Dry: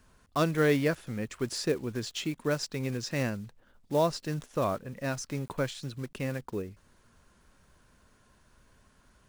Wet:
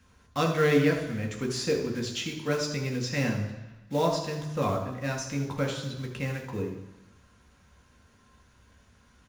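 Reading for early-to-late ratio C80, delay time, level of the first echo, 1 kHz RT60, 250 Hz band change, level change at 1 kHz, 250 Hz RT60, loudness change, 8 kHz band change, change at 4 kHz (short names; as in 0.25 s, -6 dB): 9.5 dB, 79 ms, -11.5 dB, 1.1 s, +2.5 dB, +2.5 dB, 1.0 s, +2.5 dB, +2.5 dB, +3.0 dB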